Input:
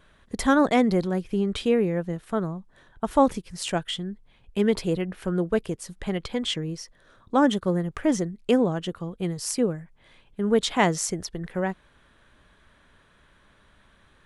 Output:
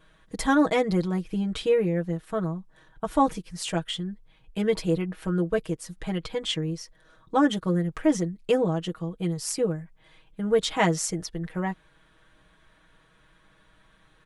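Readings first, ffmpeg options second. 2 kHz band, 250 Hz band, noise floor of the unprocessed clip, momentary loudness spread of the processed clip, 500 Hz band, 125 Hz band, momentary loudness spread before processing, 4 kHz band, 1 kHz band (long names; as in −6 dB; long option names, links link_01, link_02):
−1.5 dB, −2.0 dB, −60 dBFS, 11 LU, −1.0 dB, +1.0 dB, 13 LU, −1.0 dB, −1.5 dB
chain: -af "aecho=1:1:6.3:0.83,volume=-3.5dB"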